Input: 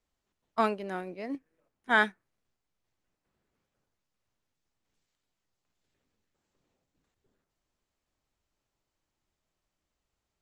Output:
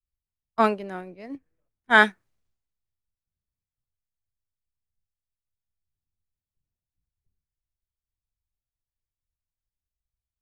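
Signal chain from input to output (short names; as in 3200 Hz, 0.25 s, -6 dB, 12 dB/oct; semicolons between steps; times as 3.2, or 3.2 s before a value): three-band expander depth 70%; gain +2.5 dB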